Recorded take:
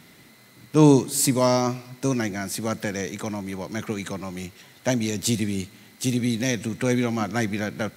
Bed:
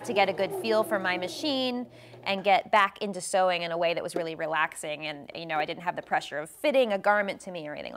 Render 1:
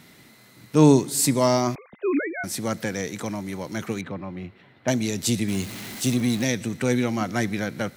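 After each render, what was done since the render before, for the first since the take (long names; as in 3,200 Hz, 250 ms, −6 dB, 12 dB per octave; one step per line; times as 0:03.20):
0:01.75–0:02.44: three sine waves on the formant tracks
0:04.01–0:04.88: high-frequency loss of the air 440 metres
0:05.48–0:06.45: converter with a step at zero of −32 dBFS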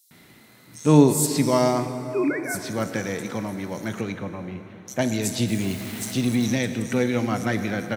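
multiband delay without the direct sound highs, lows 110 ms, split 5,600 Hz
dense smooth reverb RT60 3.8 s, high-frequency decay 0.6×, DRR 8.5 dB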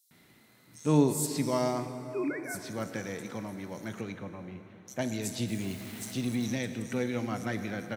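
level −9 dB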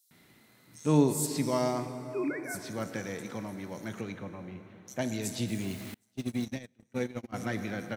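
0:05.94–0:07.34: noise gate −31 dBFS, range −33 dB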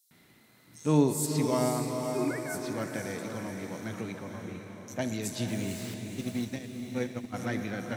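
feedback delay with all-pass diffusion 497 ms, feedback 46%, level −6 dB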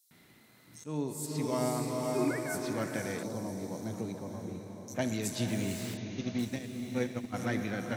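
0:00.84–0:02.18: fade in, from −15.5 dB
0:03.23–0:04.95: flat-topped bell 2,000 Hz −11.5 dB
0:05.97–0:06.39: Chebyshev low-pass filter 6,700 Hz, order 10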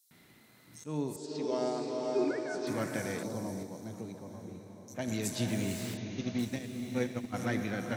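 0:01.16–0:02.67: loudspeaker in its box 300–5,700 Hz, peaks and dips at 400 Hz +6 dB, 1,100 Hz −8 dB, 2,100 Hz −9 dB
0:03.63–0:05.08: clip gain −5 dB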